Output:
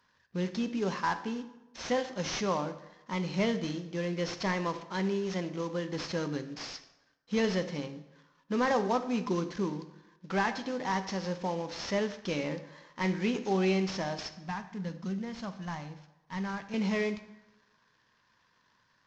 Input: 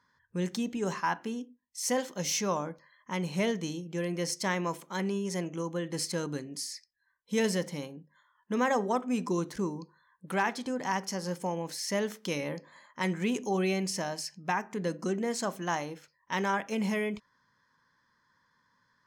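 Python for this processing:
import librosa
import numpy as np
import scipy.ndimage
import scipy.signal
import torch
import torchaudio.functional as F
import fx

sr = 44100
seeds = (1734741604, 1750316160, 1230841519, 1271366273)

y = fx.cvsd(x, sr, bps=32000)
y = fx.curve_eq(y, sr, hz=(190.0, 340.0, 870.0), db=(0, -14, -8), at=(14.48, 16.74))
y = fx.rev_plate(y, sr, seeds[0], rt60_s=1.0, hf_ratio=0.7, predelay_ms=0, drr_db=10.0)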